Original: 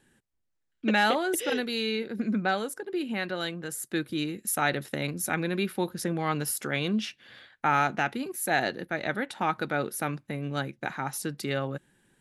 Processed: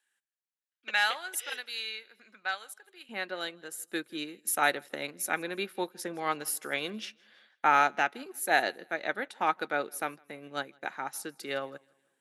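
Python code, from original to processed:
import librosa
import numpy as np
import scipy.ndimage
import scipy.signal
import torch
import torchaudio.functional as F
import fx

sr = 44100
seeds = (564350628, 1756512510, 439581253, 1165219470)

y = fx.highpass(x, sr, hz=fx.steps((0.0, 1200.0), (3.09, 370.0)), slope=12)
y = fx.echo_feedback(y, sr, ms=161, feedback_pct=41, wet_db=-22.5)
y = fx.upward_expand(y, sr, threshold_db=-45.0, expansion=1.5)
y = y * 10.0 ** (2.0 / 20.0)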